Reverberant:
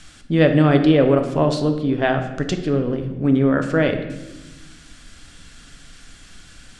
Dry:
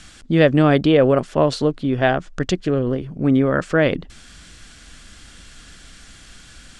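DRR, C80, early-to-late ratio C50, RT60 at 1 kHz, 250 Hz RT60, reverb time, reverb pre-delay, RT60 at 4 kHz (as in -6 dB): 5.5 dB, 10.5 dB, 8.5 dB, 0.90 s, 1.9 s, 1.1 s, 6 ms, 0.75 s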